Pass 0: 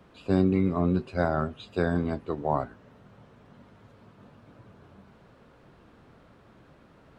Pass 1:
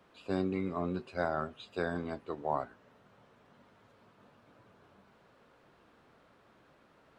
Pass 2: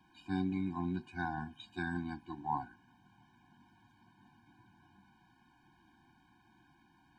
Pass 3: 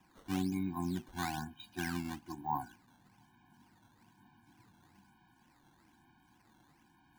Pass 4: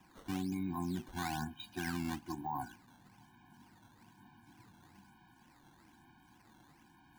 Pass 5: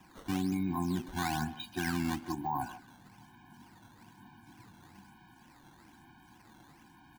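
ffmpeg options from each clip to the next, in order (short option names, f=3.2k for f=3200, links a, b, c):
-af "lowshelf=f=260:g=-12,volume=-4dB"
-af "afftfilt=real='re*eq(mod(floor(b*sr/1024/360),2),0)':imag='im*eq(mod(floor(b*sr/1024/360),2),0)':win_size=1024:overlap=0.75"
-af "acrusher=samples=10:mix=1:aa=0.000001:lfo=1:lforange=16:lforate=1.1"
-af "alimiter=level_in=9dB:limit=-24dB:level=0:latency=1:release=27,volume=-9dB,volume=3.5dB"
-filter_complex "[0:a]asplit=2[a][b];[b]adelay=150,highpass=300,lowpass=3.4k,asoftclip=type=hard:threshold=-38dB,volume=-12dB[c];[a][c]amix=inputs=2:normalize=0,volume=5dB"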